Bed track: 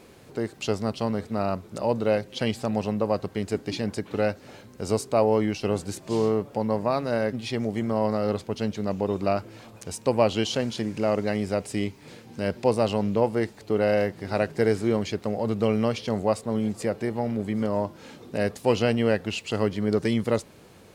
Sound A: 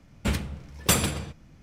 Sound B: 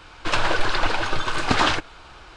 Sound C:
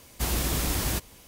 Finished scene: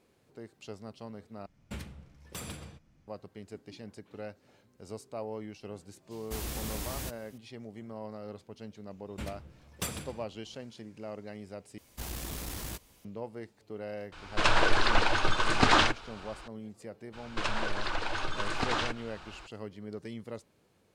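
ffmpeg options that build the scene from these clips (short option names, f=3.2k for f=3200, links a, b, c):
-filter_complex "[1:a]asplit=2[a][b];[3:a]asplit=2[c][d];[2:a]asplit=2[e][f];[0:a]volume=-17.5dB[g];[a]alimiter=limit=-17dB:level=0:latency=1:release=165[h];[d]aeval=exprs='clip(val(0),-1,0.0355)':c=same[i];[f]acompressor=threshold=-24dB:ratio=3:attack=10:release=312:knee=1:detection=peak[j];[g]asplit=3[k][l][m];[k]atrim=end=1.464[n];[h]atrim=end=1.62,asetpts=PTS-STARTPTS,volume=-12.5dB[o];[l]atrim=start=3.076:end=11.784[p];[i]atrim=end=1.27,asetpts=PTS-STARTPTS,volume=-10dB[q];[m]atrim=start=13.046[r];[c]atrim=end=1.27,asetpts=PTS-STARTPTS,volume=-10dB,afade=t=in:d=0.004:c=hsin,afade=t=out:st=1.266:d=0.004:c=hsin,adelay=6110[s];[b]atrim=end=1.62,asetpts=PTS-STARTPTS,volume=-14dB,afade=t=in:d=0.004:c=hsin,afade=t=out:st=1.616:d=0.004:c=hsin,adelay=8930[t];[e]atrim=end=2.36,asetpts=PTS-STARTPTS,volume=-3dB,afade=t=in:d=0.004:c=hsin,afade=t=out:st=2.356:d=0.004:c=hsin,adelay=622692S[u];[j]atrim=end=2.36,asetpts=PTS-STARTPTS,volume=-4.5dB,afade=t=in:d=0.02,afade=t=out:st=2.34:d=0.02,adelay=17120[v];[n][o]acrossfade=d=0.004:c1=hsin:c2=hsin[w];[w][p]acrossfade=d=0.004:c1=hsin:c2=hsin[x];[x][q]acrossfade=d=0.004:c1=hsin:c2=hsin[y];[y][r]acrossfade=d=0.004:c1=hsin:c2=hsin[z];[z][s][t][u][v]amix=inputs=5:normalize=0"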